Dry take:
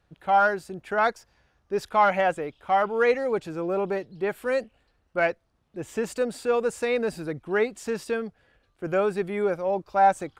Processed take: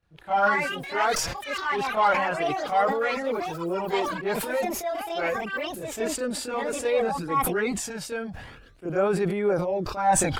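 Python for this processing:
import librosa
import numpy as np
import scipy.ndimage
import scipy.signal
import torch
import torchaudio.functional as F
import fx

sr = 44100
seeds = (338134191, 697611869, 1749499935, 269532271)

y = fx.echo_pitch(x, sr, ms=245, semitones=6, count=3, db_per_echo=-6.0)
y = fx.chorus_voices(y, sr, voices=2, hz=0.27, base_ms=26, depth_ms=3.7, mix_pct=70)
y = fx.sustainer(y, sr, db_per_s=45.0)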